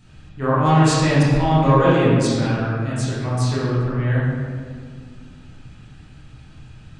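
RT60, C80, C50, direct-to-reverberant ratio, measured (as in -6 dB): 1.9 s, 0.5 dB, -2.5 dB, -9.0 dB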